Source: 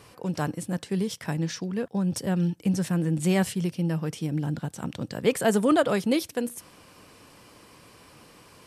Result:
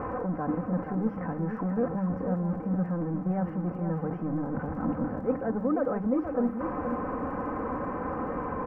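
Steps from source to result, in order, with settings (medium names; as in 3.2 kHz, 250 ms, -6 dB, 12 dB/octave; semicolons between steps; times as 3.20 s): jump at every zero crossing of -25.5 dBFS; reverse; compression 6:1, threshold -27 dBFS, peak gain reduction 11.5 dB; reverse; inverse Chebyshev low-pass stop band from 3.4 kHz, stop band 50 dB; comb 3.9 ms, depth 57%; crackle 18 per s -55 dBFS; on a send: delay 477 ms -7.5 dB; on the sum: whistle 790 Hz -52 dBFS; hum notches 50/100/150/200 Hz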